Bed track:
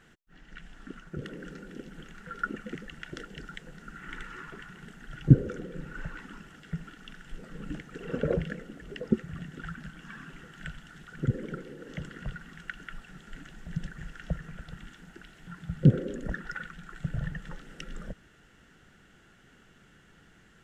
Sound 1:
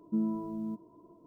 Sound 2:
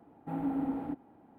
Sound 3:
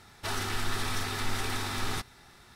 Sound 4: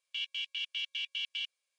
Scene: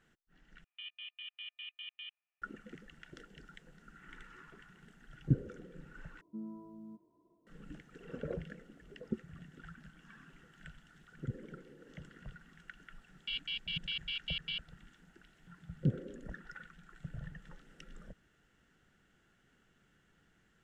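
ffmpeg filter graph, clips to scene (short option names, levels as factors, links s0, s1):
-filter_complex "[4:a]asplit=2[s0][s1];[0:a]volume=0.251[s2];[s0]highpass=f=570:t=q:w=0.5412,highpass=f=570:t=q:w=1.307,lowpass=f=2600:t=q:w=0.5176,lowpass=f=2600:t=q:w=0.7071,lowpass=f=2600:t=q:w=1.932,afreqshift=140[s3];[s1]aresample=11025,aresample=44100[s4];[s2]asplit=3[s5][s6][s7];[s5]atrim=end=0.644[s8];[s3]atrim=end=1.78,asetpts=PTS-STARTPTS,volume=0.631[s9];[s6]atrim=start=2.416:end=6.214[s10];[1:a]atrim=end=1.26,asetpts=PTS-STARTPTS,volume=0.2[s11];[s7]atrim=start=7.466[s12];[s4]atrim=end=1.78,asetpts=PTS-STARTPTS,volume=0.794,afade=t=in:d=0.004:c=hsin,afade=t=out:st=1.776:d=0.004:c=hsin,adelay=13130[s13];[s8][s9]acrossfade=d=0.004:c1=hsin:c2=hsin[s14];[s14][s10]acrossfade=d=0.004:c1=hsin:c2=hsin[s15];[s15][s11]acrossfade=d=0.004:c1=hsin:c2=hsin[s16];[s16][s12]acrossfade=d=0.004:c1=hsin:c2=hsin[s17];[s17][s13]amix=inputs=2:normalize=0"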